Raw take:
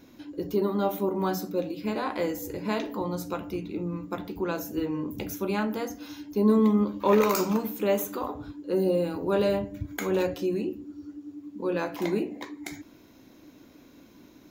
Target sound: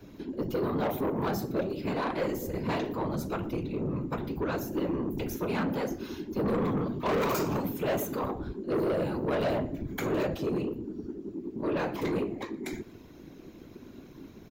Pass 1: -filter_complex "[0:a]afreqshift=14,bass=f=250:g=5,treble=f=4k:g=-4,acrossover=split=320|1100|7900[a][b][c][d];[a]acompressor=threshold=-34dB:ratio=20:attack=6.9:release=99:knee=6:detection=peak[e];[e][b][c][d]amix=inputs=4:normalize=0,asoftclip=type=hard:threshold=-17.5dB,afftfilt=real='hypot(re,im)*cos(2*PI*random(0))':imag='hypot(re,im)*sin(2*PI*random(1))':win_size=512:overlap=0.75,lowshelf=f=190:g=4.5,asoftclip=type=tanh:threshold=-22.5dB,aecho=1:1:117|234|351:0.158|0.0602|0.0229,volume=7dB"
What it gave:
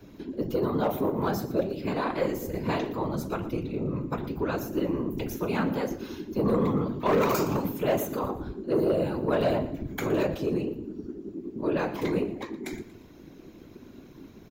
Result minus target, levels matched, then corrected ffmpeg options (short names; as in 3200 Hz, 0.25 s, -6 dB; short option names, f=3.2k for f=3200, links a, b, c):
soft clip: distortion -9 dB; echo-to-direct +6 dB
-filter_complex "[0:a]afreqshift=14,bass=f=250:g=5,treble=f=4k:g=-4,acrossover=split=320|1100|7900[a][b][c][d];[a]acompressor=threshold=-34dB:ratio=20:attack=6.9:release=99:knee=6:detection=peak[e];[e][b][c][d]amix=inputs=4:normalize=0,asoftclip=type=hard:threshold=-17.5dB,afftfilt=real='hypot(re,im)*cos(2*PI*random(0))':imag='hypot(re,im)*sin(2*PI*random(1))':win_size=512:overlap=0.75,lowshelf=f=190:g=4.5,asoftclip=type=tanh:threshold=-31dB,aecho=1:1:117|234:0.0631|0.024,volume=7dB"